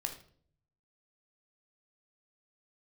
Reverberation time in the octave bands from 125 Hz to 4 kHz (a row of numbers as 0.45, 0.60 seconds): 1.1, 0.75, 0.65, 0.45, 0.40, 0.40 seconds